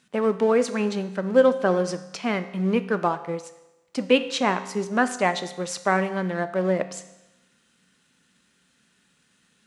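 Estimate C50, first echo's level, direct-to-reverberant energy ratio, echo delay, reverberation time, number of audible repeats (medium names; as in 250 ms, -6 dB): 13.0 dB, no echo, 10.0 dB, no echo, 0.95 s, no echo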